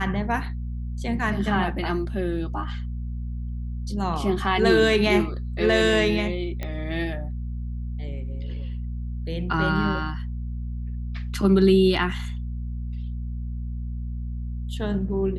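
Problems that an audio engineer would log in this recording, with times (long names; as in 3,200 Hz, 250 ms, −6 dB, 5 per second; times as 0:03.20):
mains hum 60 Hz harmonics 4 −30 dBFS
0:06.63: click −17 dBFS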